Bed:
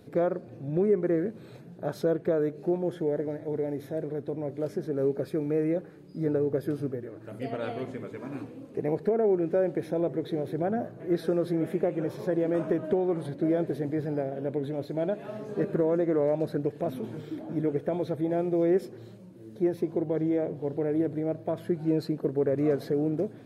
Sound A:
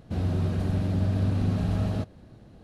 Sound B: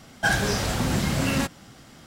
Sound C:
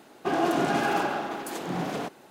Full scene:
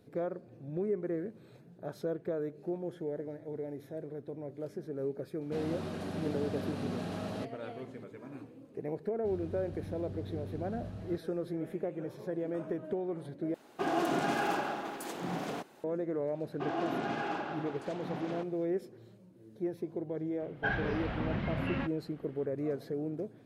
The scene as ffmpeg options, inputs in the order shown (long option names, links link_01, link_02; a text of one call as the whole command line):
ffmpeg -i bed.wav -i cue0.wav -i cue1.wav -i cue2.wav -filter_complex "[1:a]asplit=2[link_01][link_02];[3:a]asplit=2[link_03][link_04];[0:a]volume=-9dB[link_05];[link_01]highpass=270[link_06];[link_04]lowpass=4400[link_07];[2:a]lowpass=frequency=2800:width=0.5412,lowpass=frequency=2800:width=1.3066[link_08];[link_05]asplit=2[link_09][link_10];[link_09]atrim=end=13.544[link_11];[link_03]atrim=end=2.3,asetpts=PTS-STARTPTS,volume=-6dB[link_12];[link_10]atrim=start=15.836[link_13];[link_06]atrim=end=2.63,asetpts=PTS-STARTPTS,volume=-3dB,afade=type=in:duration=0.004:curve=hsin,afade=type=out:start_time=2.626:duration=0.004:curve=hsin,adelay=238581S[link_14];[link_02]atrim=end=2.63,asetpts=PTS-STARTPTS,volume=-17.5dB,afade=type=in:duration=0.004:curve=hsin,afade=type=out:start_time=2.626:duration=0.004:curve=hsin,adelay=403074S[link_15];[link_07]atrim=end=2.3,asetpts=PTS-STARTPTS,volume=-10dB,afade=type=in:duration=0.004:curve=hsin,afade=type=out:start_time=2.296:duration=0.004:curve=hsin,adelay=16350[link_16];[link_08]atrim=end=2.06,asetpts=PTS-STARTPTS,volume=-10dB,afade=type=in:duration=0.004:curve=hsin,afade=type=out:start_time=2.056:duration=0.004:curve=hsin,adelay=20400[link_17];[link_11][link_12]acrossfade=duration=0.004:curve1=hsin:curve2=hsin[link_18];[link_18][link_13]acrossfade=duration=0.004:curve1=hsin:curve2=hsin[link_19];[link_19][link_14][link_15][link_16][link_17]amix=inputs=5:normalize=0" out.wav